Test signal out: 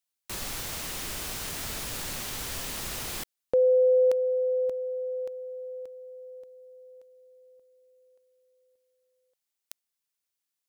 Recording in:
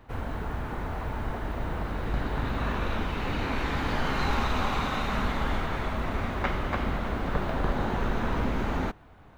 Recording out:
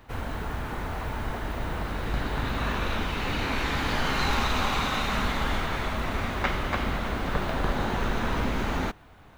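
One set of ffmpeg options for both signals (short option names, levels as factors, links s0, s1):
-af "highshelf=f=2200:g=8.5"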